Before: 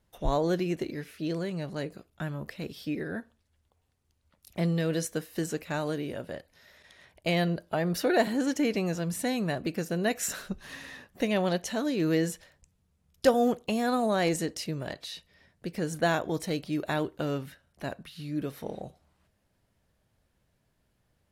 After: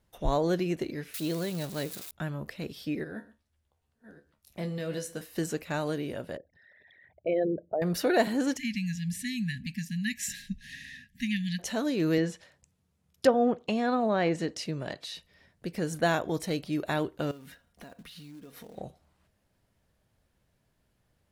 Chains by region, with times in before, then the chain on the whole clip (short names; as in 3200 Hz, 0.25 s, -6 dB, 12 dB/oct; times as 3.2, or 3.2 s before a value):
1.14–2.11 switching spikes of -30.5 dBFS + bell 3800 Hz +6 dB 0.25 oct
3.04–5.21 reverse delay 0.58 s, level -12 dB + resonator 71 Hz, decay 0.2 s, mix 80% + echo 0.126 s -19.5 dB
6.37–7.82 formant sharpening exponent 3 + HPF 80 Hz + air absorption 250 m
8.57–11.59 brick-wall FIR band-stop 260–1600 Hz + high shelf 9500 Hz -7.5 dB
12.18–15.15 treble ducked by the level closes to 2000 Hz, closed at -20.5 dBFS + HPF 88 Hz
17.31–18.78 comb 4.2 ms, depth 41% + compressor 16:1, threshold -43 dBFS + short-mantissa float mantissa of 2-bit
whole clip: dry